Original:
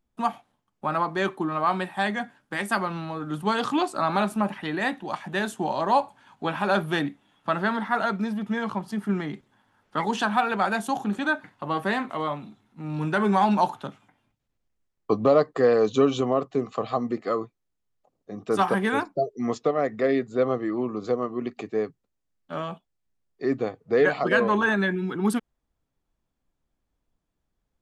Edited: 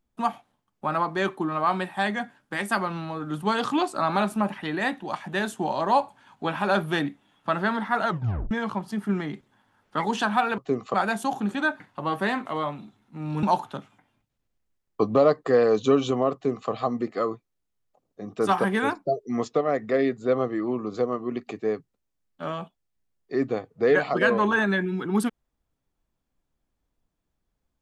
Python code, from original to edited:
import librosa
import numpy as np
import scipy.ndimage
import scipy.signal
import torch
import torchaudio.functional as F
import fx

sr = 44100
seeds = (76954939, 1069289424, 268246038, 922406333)

y = fx.edit(x, sr, fx.tape_stop(start_s=8.07, length_s=0.44),
    fx.cut(start_s=13.07, length_s=0.46),
    fx.duplicate(start_s=16.44, length_s=0.36, to_s=10.58), tone=tone)